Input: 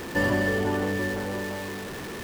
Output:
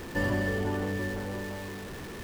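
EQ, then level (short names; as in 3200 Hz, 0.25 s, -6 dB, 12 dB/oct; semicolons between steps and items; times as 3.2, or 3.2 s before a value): low shelf 100 Hz +10.5 dB; -6.0 dB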